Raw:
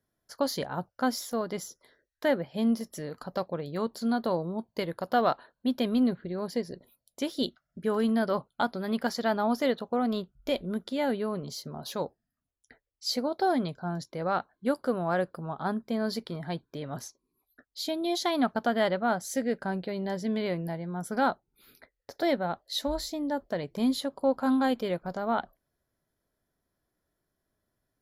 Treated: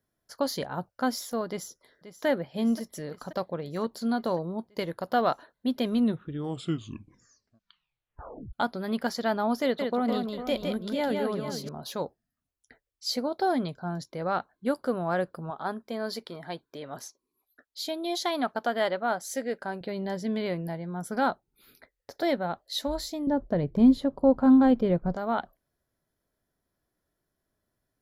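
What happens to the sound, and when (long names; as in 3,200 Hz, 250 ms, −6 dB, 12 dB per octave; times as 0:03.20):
0:01.48–0:02.26: delay throw 530 ms, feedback 70%, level −13 dB
0:05.88: tape stop 2.65 s
0:09.63–0:11.69: multi-tap delay 161/450/696 ms −4.5/−10.5/−17 dB
0:15.50–0:19.81: bass and treble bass −11 dB, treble 0 dB
0:23.27–0:25.16: spectral tilt −4 dB per octave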